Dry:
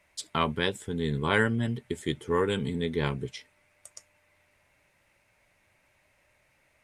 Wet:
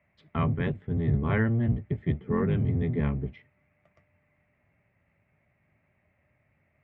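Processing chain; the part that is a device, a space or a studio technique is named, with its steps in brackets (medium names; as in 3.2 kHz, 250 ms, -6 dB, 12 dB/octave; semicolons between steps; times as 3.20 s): sub-octave bass pedal (octave divider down 1 oct, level +4 dB; cabinet simulation 81–2000 Hz, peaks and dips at 100 Hz +4 dB, 150 Hz +4 dB, 330 Hz -5 dB, 500 Hz -6 dB, 940 Hz -9 dB, 1.5 kHz -8 dB)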